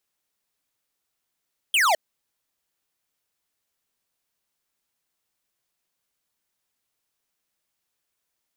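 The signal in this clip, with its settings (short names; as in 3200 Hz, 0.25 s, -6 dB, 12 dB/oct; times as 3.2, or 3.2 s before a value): laser zap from 3300 Hz, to 590 Hz, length 0.21 s square, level -19 dB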